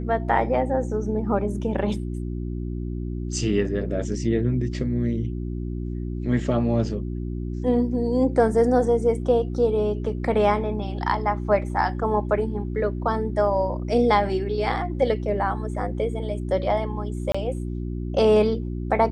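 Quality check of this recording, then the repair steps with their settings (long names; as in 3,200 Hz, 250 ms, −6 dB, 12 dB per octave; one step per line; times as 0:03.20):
mains hum 60 Hz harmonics 6 −29 dBFS
0:17.32–0:17.34: drop-out 25 ms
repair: hum removal 60 Hz, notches 6
repair the gap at 0:17.32, 25 ms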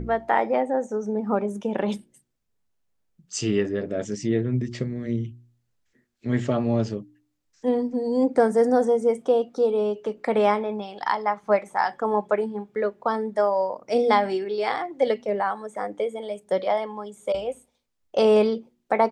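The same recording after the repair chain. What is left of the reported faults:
none of them is left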